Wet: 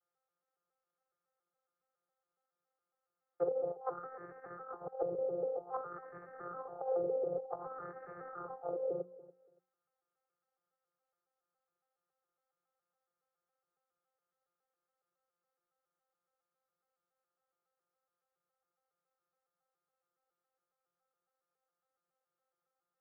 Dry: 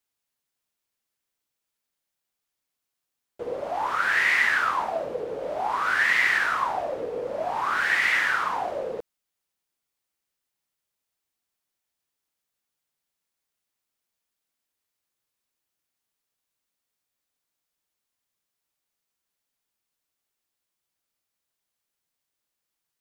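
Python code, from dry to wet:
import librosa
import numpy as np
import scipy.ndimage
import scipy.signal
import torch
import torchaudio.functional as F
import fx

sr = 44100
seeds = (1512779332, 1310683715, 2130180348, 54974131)

y = fx.vocoder_arp(x, sr, chord='bare fifth', root=53, every_ms=139)
y = fx.peak_eq(y, sr, hz=810.0, db=10.0, octaves=0.23)
y = fx.hum_notches(y, sr, base_hz=60, count=6)
y = y + 0.44 * np.pad(y, (int(2.3 * sr / 1000.0), 0))[:len(y)]
y = fx.over_compress(y, sr, threshold_db=-26.0, ratio=-0.5)
y = fx.env_lowpass_down(y, sr, base_hz=350.0, full_db=-24.0)
y = fx.ladder_lowpass(y, sr, hz=1400.0, resonance_pct=55)
y = fx.fixed_phaser(y, sr, hz=920.0, stages=6)
y = fx.echo_feedback(y, sr, ms=285, feedback_pct=21, wet_db=-19.0)
y = F.gain(torch.from_numpy(y), 6.5).numpy()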